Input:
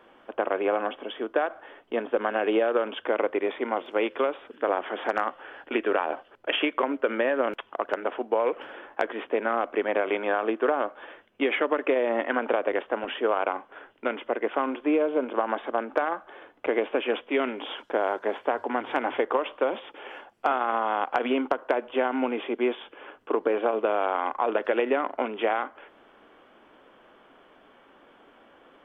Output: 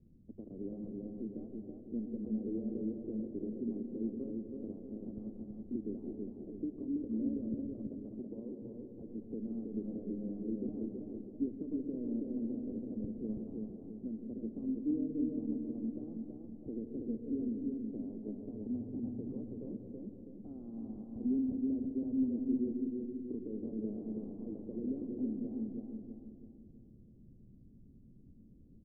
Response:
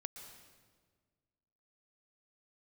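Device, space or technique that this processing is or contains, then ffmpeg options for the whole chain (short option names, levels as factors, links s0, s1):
club heard from the street: -filter_complex "[0:a]alimiter=limit=0.158:level=0:latency=1:release=75,lowpass=f=160:w=0.5412,lowpass=f=160:w=1.3066[s0];[1:a]atrim=start_sample=2205[s1];[s0][s1]afir=irnorm=-1:irlink=0,asettb=1/sr,asplit=3[s2][s3][s4];[s2]atrim=end=7.914[s5];[s3]atrim=start=7.91:end=8.62,asetpts=PTS-STARTPTS,afade=t=in:d=0.004:c=qsin,afade=t=out:st=0.706:d=0.004:c=qsin,highpass=220[s6];[s4]atrim=start=8.616[s7];[s5][s6]acrossfade=d=0.004:c1=hsin:c2=qsin[s8];[s8][s7]acrossfade=d=0.004:c1=qsin:c2=hsin,asplit=2[s9][s10];[s10]adelay=327,lowpass=f=2000:p=1,volume=0.708,asplit=2[s11][s12];[s12]adelay=327,lowpass=f=2000:p=1,volume=0.44,asplit=2[s13][s14];[s14]adelay=327,lowpass=f=2000:p=1,volume=0.44,asplit=2[s15][s16];[s16]adelay=327,lowpass=f=2000:p=1,volume=0.44,asplit=2[s17][s18];[s18]adelay=327,lowpass=f=2000:p=1,volume=0.44,asplit=2[s19][s20];[s20]adelay=327,lowpass=f=2000:p=1,volume=0.44[s21];[s9][s11][s13][s15][s17][s19][s21]amix=inputs=7:normalize=0,volume=7.94"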